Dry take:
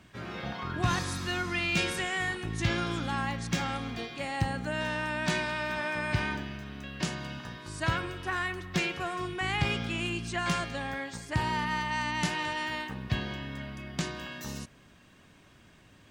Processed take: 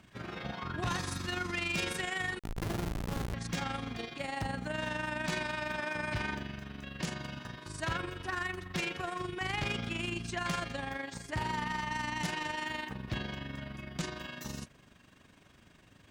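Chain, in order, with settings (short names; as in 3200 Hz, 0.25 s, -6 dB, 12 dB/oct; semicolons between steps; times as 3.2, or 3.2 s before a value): 2.39–3.34 Schmitt trigger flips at -27 dBFS; AM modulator 24 Hz, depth 45%; added harmonics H 5 -9 dB, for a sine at -16.5 dBFS; gain -8.5 dB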